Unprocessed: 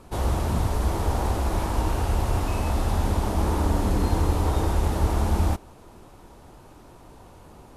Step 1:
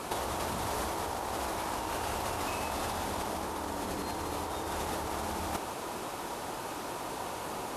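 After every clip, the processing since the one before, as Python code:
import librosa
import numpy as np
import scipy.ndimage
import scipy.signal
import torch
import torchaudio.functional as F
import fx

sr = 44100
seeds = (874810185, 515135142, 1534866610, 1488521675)

y = fx.highpass(x, sr, hz=670.0, slope=6)
y = fx.over_compress(y, sr, threshold_db=-42.0, ratio=-1.0)
y = y * 10.0 ** (7.5 / 20.0)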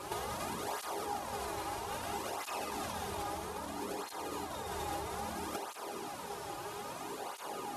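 y = fx.comb_fb(x, sr, f0_hz=410.0, decay_s=0.44, harmonics='all', damping=0.0, mix_pct=80)
y = fx.flanger_cancel(y, sr, hz=0.61, depth_ms=4.6)
y = y * 10.0 ** (10.5 / 20.0)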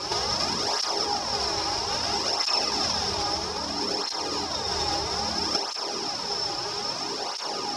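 y = fx.lowpass_res(x, sr, hz=5300.0, q=15.0)
y = y * 10.0 ** (8.5 / 20.0)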